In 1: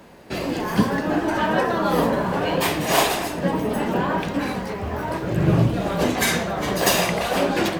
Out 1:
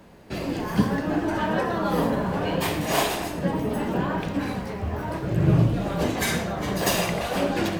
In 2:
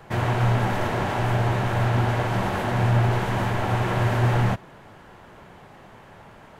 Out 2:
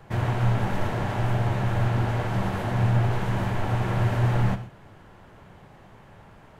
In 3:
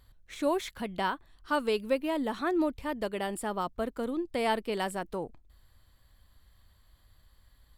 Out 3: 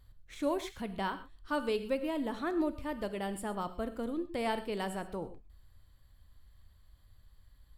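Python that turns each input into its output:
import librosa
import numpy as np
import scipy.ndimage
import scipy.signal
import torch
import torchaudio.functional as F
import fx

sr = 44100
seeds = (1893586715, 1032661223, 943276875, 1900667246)

y = fx.low_shelf(x, sr, hz=170.0, db=8.0)
y = fx.rev_gated(y, sr, seeds[0], gate_ms=150, shape='flat', drr_db=10.5)
y = y * librosa.db_to_amplitude(-5.5)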